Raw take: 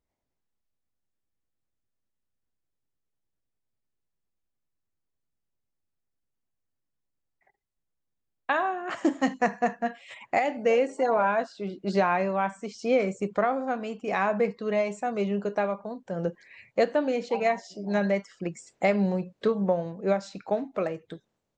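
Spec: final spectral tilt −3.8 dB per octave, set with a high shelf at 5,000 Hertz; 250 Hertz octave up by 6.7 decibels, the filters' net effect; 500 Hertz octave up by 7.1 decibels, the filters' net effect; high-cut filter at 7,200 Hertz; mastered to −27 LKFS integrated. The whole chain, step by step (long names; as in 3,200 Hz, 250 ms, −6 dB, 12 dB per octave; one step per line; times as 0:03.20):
low-pass filter 7,200 Hz
parametric band 250 Hz +7 dB
parametric band 500 Hz +7 dB
high-shelf EQ 5,000 Hz −9 dB
level −5.5 dB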